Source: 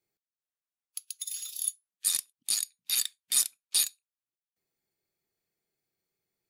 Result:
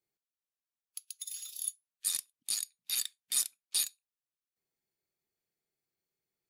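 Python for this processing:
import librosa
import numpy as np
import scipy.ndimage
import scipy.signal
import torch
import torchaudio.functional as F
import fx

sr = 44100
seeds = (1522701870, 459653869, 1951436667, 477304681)

y = fx.highpass(x, sr, hz=fx.line((0.99, 810.0), (1.6, 250.0)), slope=12, at=(0.99, 1.6), fade=0.02)
y = y * librosa.db_to_amplitude(-5.0)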